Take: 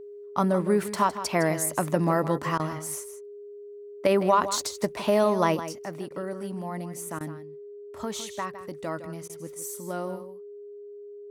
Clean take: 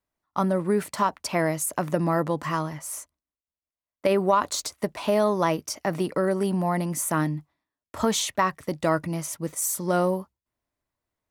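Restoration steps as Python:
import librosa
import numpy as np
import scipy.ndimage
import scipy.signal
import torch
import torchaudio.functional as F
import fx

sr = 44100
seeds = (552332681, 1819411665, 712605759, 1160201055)

y = fx.notch(x, sr, hz=410.0, q=30.0)
y = fx.fix_interpolate(y, sr, at_s=(2.58, 6.09, 7.19, 9.28), length_ms=14.0)
y = fx.fix_echo_inverse(y, sr, delay_ms=160, level_db=-12.0)
y = fx.gain(y, sr, db=fx.steps((0.0, 0.0), (5.66, 10.0)))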